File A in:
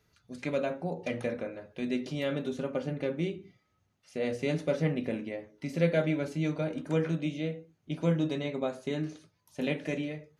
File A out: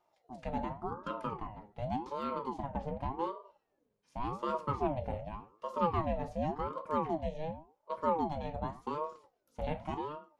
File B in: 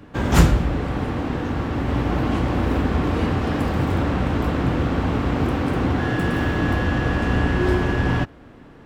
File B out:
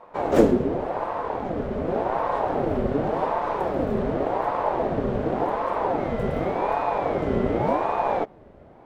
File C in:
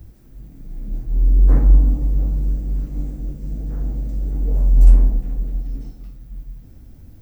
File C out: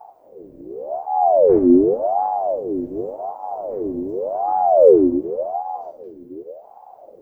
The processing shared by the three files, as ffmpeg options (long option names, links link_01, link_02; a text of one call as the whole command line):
ffmpeg -i in.wav -af "tiltshelf=frequency=930:gain=5.5,aeval=exprs='val(0)*sin(2*PI*550*n/s+550*0.45/0.88*sin(2*PI*0.88*n/s))':channel_layout=same,volume=-5.5dB" out.wav